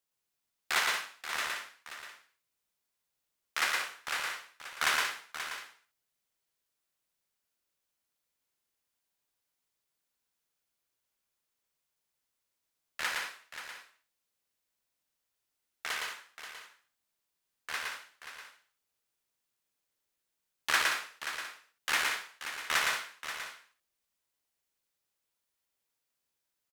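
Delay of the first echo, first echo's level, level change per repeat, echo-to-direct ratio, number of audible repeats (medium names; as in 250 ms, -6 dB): 114 ms, -2.5 dB, no regular repeats, -1.0 dB, 5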